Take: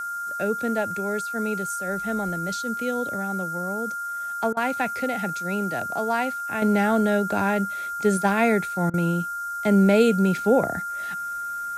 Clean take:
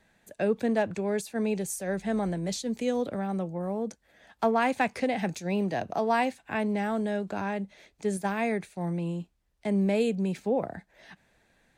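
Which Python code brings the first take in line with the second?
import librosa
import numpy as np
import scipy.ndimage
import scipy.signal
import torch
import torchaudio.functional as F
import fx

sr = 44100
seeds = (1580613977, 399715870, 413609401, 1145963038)

y = fx.notch(x, sr, hz=1400.0, q=30.0)
y = fx.fix_interpolate(y, sr, at_s=(4.53, 8.9), length_ms=37.0)
y = fx.noise_reduce(y, sr, print_start_s=3.92, print_end_s=4.42, reduce_db=30.0)
y = fx.fix_level(y, sr, at_s=6.62, step_db=-8.0)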